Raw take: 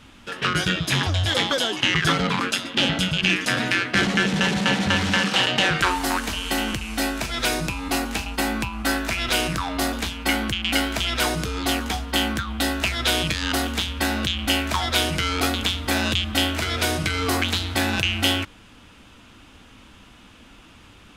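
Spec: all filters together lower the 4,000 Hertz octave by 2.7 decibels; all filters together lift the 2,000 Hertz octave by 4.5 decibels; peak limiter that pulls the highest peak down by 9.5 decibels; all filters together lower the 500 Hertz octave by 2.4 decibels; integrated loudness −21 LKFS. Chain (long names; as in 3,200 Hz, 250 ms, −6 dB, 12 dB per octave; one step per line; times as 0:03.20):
parametric band 500 Hz −3.5 dB
parametric band 2,000 Hz +8 dB
parametric band 4,000 Hz −8 dB
level +2.5 dB
brickwall limiter −9.5 dBFS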